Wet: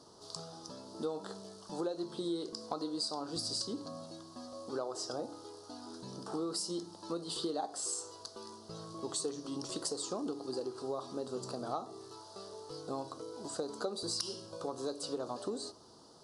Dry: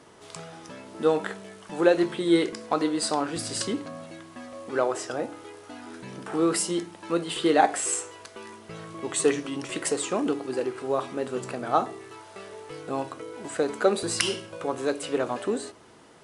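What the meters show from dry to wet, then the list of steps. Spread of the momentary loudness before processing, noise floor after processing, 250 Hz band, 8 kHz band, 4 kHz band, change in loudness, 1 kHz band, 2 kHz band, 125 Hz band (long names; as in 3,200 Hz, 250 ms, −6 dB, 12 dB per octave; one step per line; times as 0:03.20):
19 LU, −55 dBFS, −12.0 dB, −9.5 dB, −6.0 dB, −13.0 dB, −14.0 dB, −22.5 dB, −10.0 dB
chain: drawn EQ curve 1,200 Hz 0 dB, 2,200 Hz −23 dB, 4,600 Hz +12 dB, 7,400 Hz +1 dB
downward compressor 6 to 1, threshold −28 dBFS, peak gain reduction 13.5 dB
level −6 dB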